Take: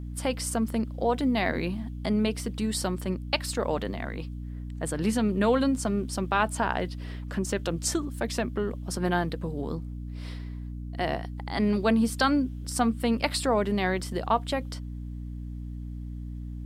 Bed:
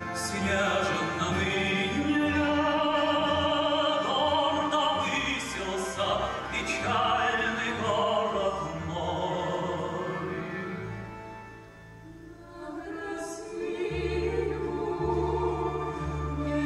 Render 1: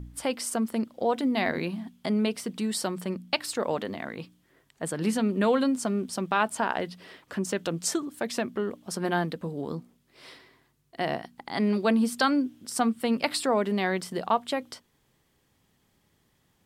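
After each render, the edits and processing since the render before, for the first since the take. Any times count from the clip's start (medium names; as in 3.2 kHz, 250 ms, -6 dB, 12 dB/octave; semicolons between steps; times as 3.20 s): de-hum 60 Hz, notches 5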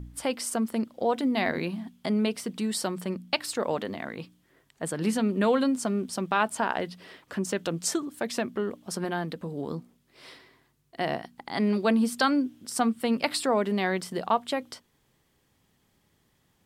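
9.04–9.52 s: compression 1.5:1, threshold -32 dBFS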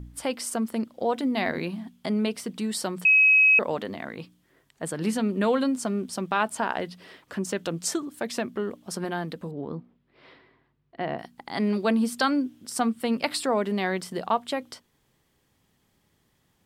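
3.05–3.59 s: bleep 2.55 kHz -14 dBFS; 9.51–11.19 s: distance through air 350 m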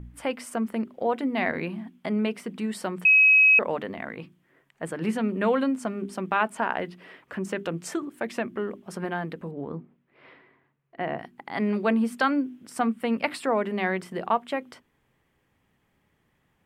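resonant high shelf 3.2 kHz -8.5 dB, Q 1.5; hum notches 50/100/150/200/250/300/350/400 Hz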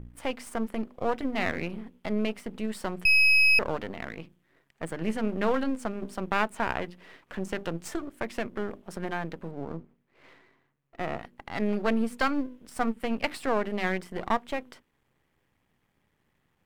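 partial rectifier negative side -12 dB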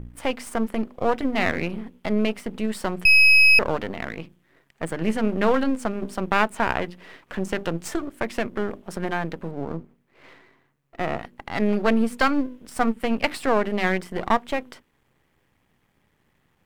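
trim +6 dB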